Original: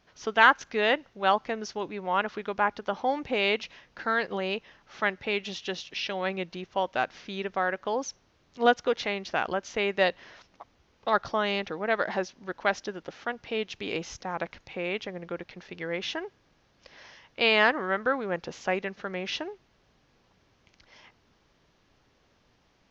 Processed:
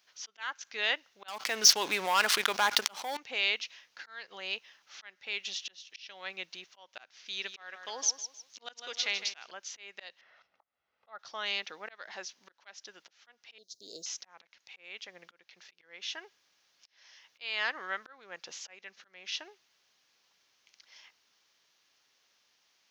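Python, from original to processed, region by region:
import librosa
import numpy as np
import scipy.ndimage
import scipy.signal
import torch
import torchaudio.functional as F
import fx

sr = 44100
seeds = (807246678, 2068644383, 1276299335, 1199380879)

y = fx.chain(x, sr, fx.leveller(passes=2),
    fx.env_flatten(amount_pct=70), at=(1.28, 3.17))
y = fx.chain(y, sr, fx.peak_eq(hz=5800.0, db=6.5, octaves=2.3),
    fx.echo_feedback(ms=156, feedback_pct=31, wet_db=-11.5), at=(7.26, 9.51))
y = fx.chain(y, sr, fx.lowpass(hz=1600.0, slope=12),
    fx.comb(ms=1.5, depth=0.42), at=(10.21, 11.19))
y = fx.chain(y, sr, fx.cheby1_bandstop(low_hz=650.0, high_hz=4200.0, order=4),
    fx.high_shelf(hz=5800.0, db=8.0), at=(13.58, 14.06))
y = fx.high_shelf(y, sr, hz=6200.0, db=-4.0)
y = fx.auto_swell(y, sr, attack_ms=442.0)
y = np.diff(y, prepend=0.0)
y = y * librosa.db_to_amplitude(8.0)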